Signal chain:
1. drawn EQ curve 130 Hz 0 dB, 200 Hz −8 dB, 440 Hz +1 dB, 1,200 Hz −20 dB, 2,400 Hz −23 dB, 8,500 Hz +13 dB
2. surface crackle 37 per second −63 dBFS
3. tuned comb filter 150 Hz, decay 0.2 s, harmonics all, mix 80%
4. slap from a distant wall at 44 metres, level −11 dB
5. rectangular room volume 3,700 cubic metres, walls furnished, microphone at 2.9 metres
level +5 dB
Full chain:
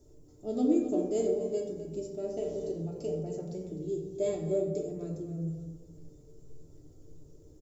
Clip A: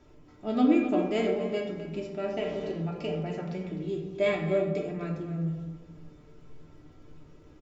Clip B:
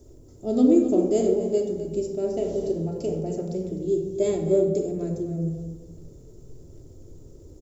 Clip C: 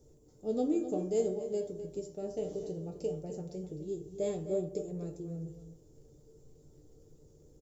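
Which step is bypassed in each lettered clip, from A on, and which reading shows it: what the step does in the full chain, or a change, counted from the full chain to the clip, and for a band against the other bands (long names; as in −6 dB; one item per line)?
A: 1, 1 kHz band +6.5 dB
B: 3, 250 Hz band +1.5 dB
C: 5, echo-to-direct ratio −1.0 dB to −12.0 dB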